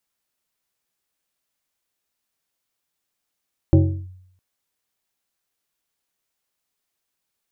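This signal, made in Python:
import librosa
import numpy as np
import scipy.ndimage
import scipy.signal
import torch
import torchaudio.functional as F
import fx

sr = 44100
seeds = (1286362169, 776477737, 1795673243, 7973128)

y = fx.fm2(sr, length_s=0.66, level_db=-7.0, carrier_hz=92.1, ratio=2.49, index=1.2, index_s=0.35, decay_s=0.73, shape='linear')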